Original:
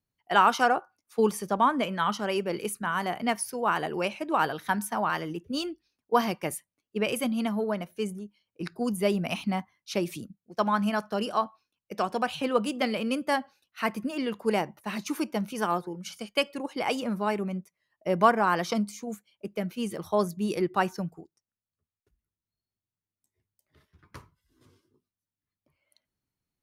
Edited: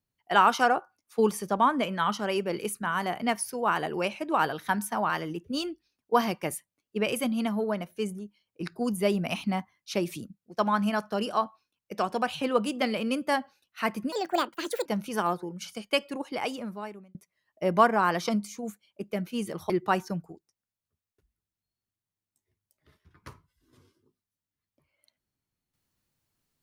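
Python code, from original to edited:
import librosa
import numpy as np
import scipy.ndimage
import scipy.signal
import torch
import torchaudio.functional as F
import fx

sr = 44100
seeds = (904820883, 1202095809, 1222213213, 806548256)

y = fx.edit(x, sr, fx.speed_span(start_s=14.12, length_s=1.18, speed=1.6),
    fx.fade_out_span(start_s=16.58, length_s=1.01),
    fx.cut(start_s=20.14, length_s=0.44), tone=tone)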